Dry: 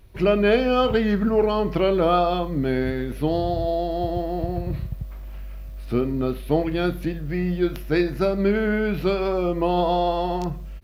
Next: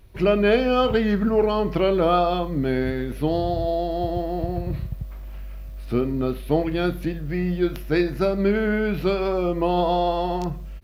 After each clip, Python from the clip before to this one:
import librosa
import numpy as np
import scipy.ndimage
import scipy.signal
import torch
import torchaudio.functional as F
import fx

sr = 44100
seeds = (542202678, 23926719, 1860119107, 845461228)

y = x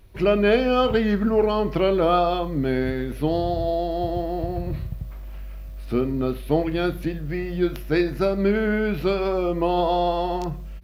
y = fx.hum_notches(x, sr, base_hz=60, count=3)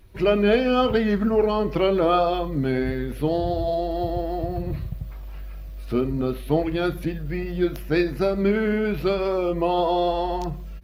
y = fx.spec_quant(x, sr, step_db=15)